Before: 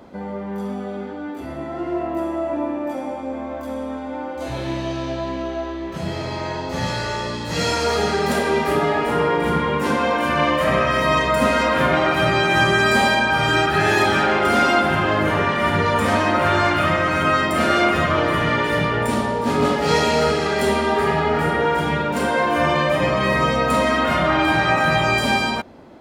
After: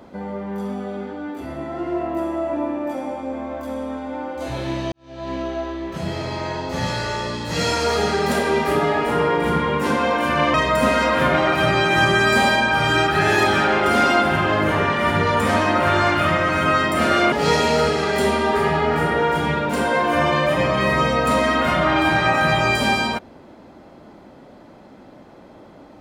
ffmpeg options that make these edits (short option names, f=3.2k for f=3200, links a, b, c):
-filter_complex "[0:a]asplit=4[a][b][c][d];[a]atrim=end=4.92,asetpts=PTS-STARTPTS,afade=t=out:st=4.916:d=0.004:c=hsin[e];[b]atrim=start=4.92:end=10.542,asetpts=PTS-STARTPTS,afade=t=in:d=0.41:c=qua[f];[c]atrim=start=11.128:end=17.912[g];[d]atrim=start=19.748[h];[e][f]concat=n=2:v=0:a=1[i];[i][g]acrossfade=d=0.004:c1=hsin:c2=hsin[j];[j][h]acrossfade=d=0.004:c1=hsin:c2=hsin"